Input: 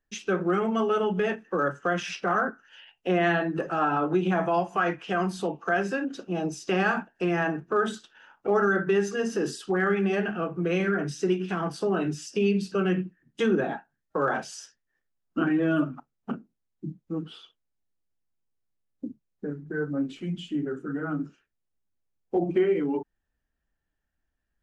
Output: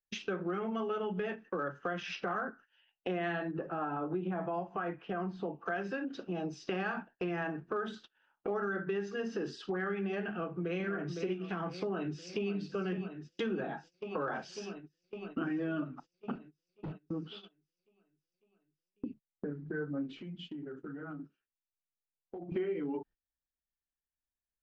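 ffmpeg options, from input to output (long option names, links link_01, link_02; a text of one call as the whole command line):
ffmpeg -i in.wav -filter_complex "[0:a]asettb=1/sr,asplit=3[link_01][link_02][link_03];[link_01]atrim=end=3.514[link_04];[link_02]atrim=start=3.51:end=5.66,asetpts=PTS-STARTPTS,afade=type=in:duration=0.004:curve=qsin,afade=type=out:start_time=2.146:duration=0.004:curve=qsin,lowpass=frequency=1100:poles=1[link_05];[link_03]atrim=start=5.656[link_06];[link_04][link_05]acrossfade=duration=0.004:curve1=hsin:curve2=qsin[link_07];[link_07][link_06]acrossfade=duration=0.004:curve1=qsin:curve2=hsin,asplit=2[link_08][link_09];[link_09]afade=type=in:start_time=10.32:duration=0.01,afade=type=out:start_time=10.82:duration=0.01,aecho=0:1:510|1020|1530|2040:0.375837|0.150335|0.060134|0.0240536[link_10];[link_08][link_10]amix=inputs=2:normalize=0,asplit=2[link_11][link_12];[link_12]afade=type=in:start_time=11.73:duration=0.01,afade=type=out:start_time=12.53:duration=0.01,aecho=0:1:550|1100|1650|2200|2750|3300|3850|4400|4950|5500|6050|6600:0.251189|0.200951|0.160761|0.128609|0.102887|0.0823095|0.0658476|0.0526781|0.0421425|0.033714|0.0269712|0.0215769[link_13];[link_11][link_13]amix=inputs=2:normalize=0,asettb=1/sr,asplit=3[link_14][link_15][link_16];[link_14]atrim=end=16.354[link_17];[link_15]atrim=start=16.35:end=17.02,asetpts=PTS-STARTPTS,afade=type=in:duration=0.004:curve=qsin,afade=type=out:start_time=0.666:duration=0.004:curve=qsin,asoftclip=type=hard:threshold=-38dB[link_18];[link_16]atrim=start=17.016[link_19];[link_17][link_18]acrossfade=duration=0.004:curve1=hsin:curve2=qsin[link_20];[link_20][link_19]acrossfade=duration=0.004:curve1=qsin:curve2=hsin,asettb=1/sr,asplit=3[link_21][link_22][link_23];[link_21]atrim=end=20.164[link_24];[link_22]atrim=start=20.16:end=22.52,asetpts=PTS-STARTPTS,afade=type=in:duration=0.004:curve=qsin,afade=type=out:start_time=2.356:duration=0.004:curve=qsin,acompressor=threshold=-40dB:ratio=20:attack=3.2:release=140:knee=1:detection=peak[link_25];[link_23]atrim=start=22.516[link_26];[link_24][link_25]acrossfade=duration=0.004:curve1=hsin:curve2=qsin[link_27];[link_27][link_26]acrossfade=duration=0.004:curve1=qsin:curve2=hsin,agate=range=-21dB:threshold=-45dB:ratio=16:detection=peak,lowpass=frequency=4900:width=0.5412,lowpass=frequency=4900:width=1.3066,acompressor=threshold=-40dB:ratio=2.5,volume=1.5dB" out.wav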